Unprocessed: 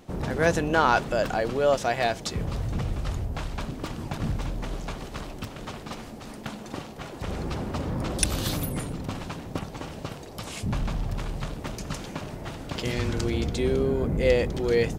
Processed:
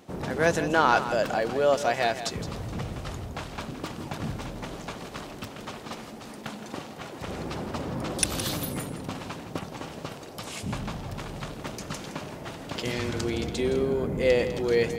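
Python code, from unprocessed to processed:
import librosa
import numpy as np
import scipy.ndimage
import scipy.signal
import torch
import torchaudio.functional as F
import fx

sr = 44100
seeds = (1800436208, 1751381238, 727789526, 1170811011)

p1 = fx.highpass(x, sr, hz=170.0, slope=6)
y = p1 + fx.echo_single(p1, sr, ms=166, db=-11.5, dry=0)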